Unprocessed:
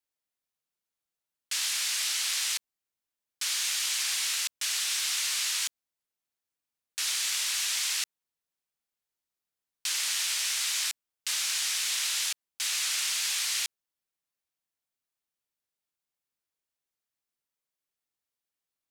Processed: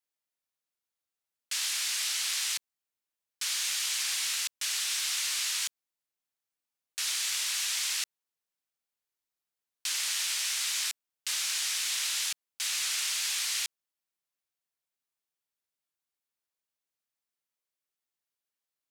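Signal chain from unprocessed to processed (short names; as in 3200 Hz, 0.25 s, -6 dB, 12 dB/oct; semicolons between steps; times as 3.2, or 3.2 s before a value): low shelf 260 Hz -5.5 dB; gain -1.5 dB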